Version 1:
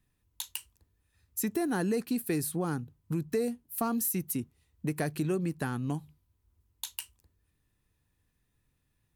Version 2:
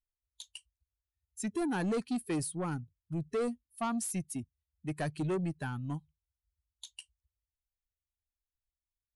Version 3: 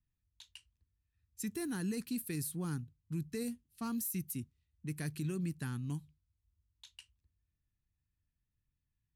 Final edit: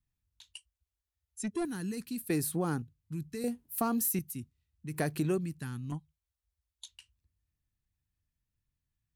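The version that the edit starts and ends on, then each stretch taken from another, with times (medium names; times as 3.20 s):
3
0.54–1.65 s: from 2
2.30–2.82 s: from 1
3.44–4.19 s: from 1
4.94–5.38 s: from 1
5.92–6.88 s: from 2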